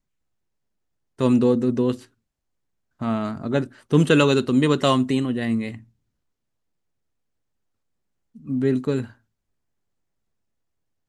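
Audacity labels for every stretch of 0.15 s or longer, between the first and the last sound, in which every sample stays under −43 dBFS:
2.050000	3.010000	silence
5.830000	8.350000	silence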